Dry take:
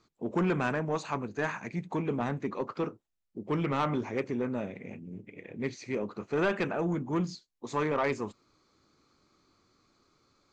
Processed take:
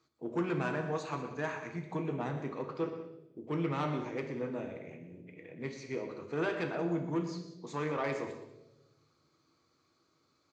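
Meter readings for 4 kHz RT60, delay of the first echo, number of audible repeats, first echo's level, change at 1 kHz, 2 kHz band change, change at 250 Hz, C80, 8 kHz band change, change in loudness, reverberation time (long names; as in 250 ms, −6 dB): 0.90 s, 122 ms, 2, −12.5 dB, −5.0 dB, −4.5 dB, −4.0 dB, 8.0 dB, can't be measured, −4.0 dB, 1.0 s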